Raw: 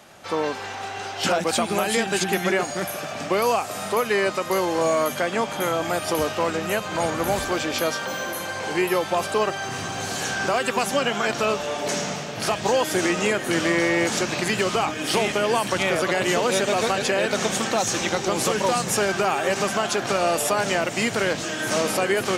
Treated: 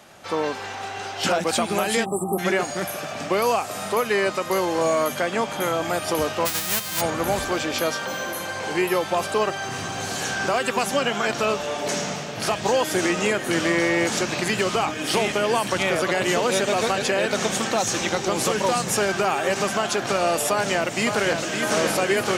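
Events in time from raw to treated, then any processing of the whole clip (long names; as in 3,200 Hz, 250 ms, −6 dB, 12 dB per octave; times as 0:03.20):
0:02.05–0:02.39: time-frequency box erased 1,300–7,600 Hz
0:06.45–0:07.00: spectral envelope flattened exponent 0.1
0:20.50–0:21.60: delay throw 560 ms, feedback 70%, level −6 dB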